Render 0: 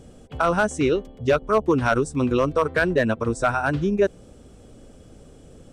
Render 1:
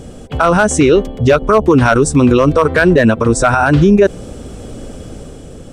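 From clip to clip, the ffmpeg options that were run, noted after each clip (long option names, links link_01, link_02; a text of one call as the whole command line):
ffmpeg -i in.wav -af "dynaudnorm=framelen=130:gausssize=9:maxgain=4dB,alimiter=level_in=15dB:limit=-1dB:release=50:level=0:latency=1,volume=-1dB" out.wav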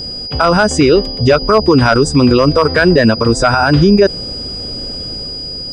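ffmpeg -i in.wav -filter_complex "[0:a]aeval=exprs='val(0)+0.0794*sin(2*PI*4900*n/s)':channel_layout=same,acrossover=split=8500[link_01][link_02];[link_02]acompressor=threshold=-50dB:ratio=4:attack=1:release=60[link_03];[link_01][link_03]amix=inputs=2:normalize=0" out.wav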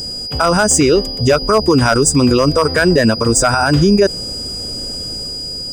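ffmpeg -i in.wav -af "aexciter=amount=4.3:drive=8.4:freq=6200,volume=-2.5dB" out.wav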